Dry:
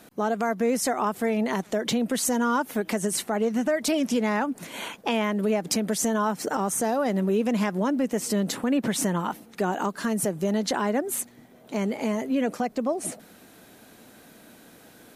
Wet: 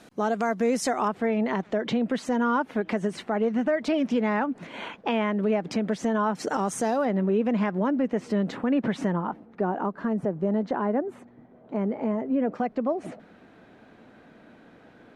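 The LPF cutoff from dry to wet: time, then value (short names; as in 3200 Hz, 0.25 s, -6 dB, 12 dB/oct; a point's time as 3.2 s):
7200 Hz
from 1.08 s 2700 Hz
from 6.35 s 6200 Hz
from 7.05 s 2300 Hz
from 9.12 s 1200 Hz
from 12.55 s 2200 Hz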